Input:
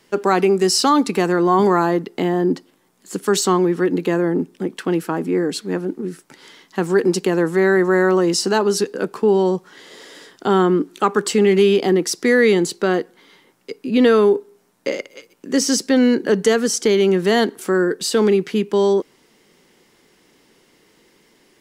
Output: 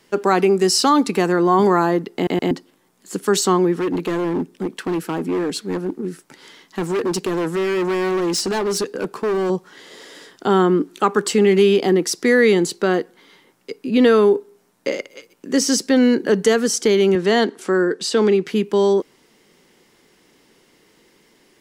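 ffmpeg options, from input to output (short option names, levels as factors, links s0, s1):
-filter_complex "[0:a]asettb=1/sr,asplit=3[s0][s1][s2];[s0]atrim=end=3.784[s3];[s1]atrim=start=3.78:end=9.5,asetpts=PTS-STARTPTS,afade=t=in:d=0.004:c=qsin,afade=t=out:st=5.716:d=0.004:c=qsin,asoftclip=type=hard:threshold=0.133[s4];[s2]atrim=start=9.496[s5];[s3][s4]acrossfade=d=0.004:c1=hsin:c2=qsin[s6];[s6][s5]acrossfade=d=0.004:c1=qsin:c2=hsin,asettb=1/sr,asplit=3[s7][s8][s9];[s7]atrim=end=17.154[s10];[s8]atrim=start=17.15:end=18.46,asetpts=PTS-STARTPTS,afade=t=in:d=0.004:c=qsin,afade=t=out:st=1.306:d=0.004:c=qsin,highpass=160,lowpass=7500[s11];[s9]atrim=start=18.456[s12];[s10][s11]acrossfade=d=0.004:c1=hsin:c2=qsin[s13];[s13][s12]acrossfade=d=0.004:c1=qsin:c2=hsin,asplit=4[s14][s15][s16][s17];[s14]atrim=end=2.272[s18];[s15]atrim=start=2.148:end=2.272[s19];[s16]atrim=start=2.148:end=2.272[s20];[s17]atrim=start=2.508[s21];[s18][s19]acrossfade=d=0.004:c1=hsin:c2=hsin[s22];[s22][s20]acrossfade=d=0.004:c1=hsin:c2=hsin[s23];[s23][s21]acrossfade=d=0.004:c1=hsin:c2=hsin"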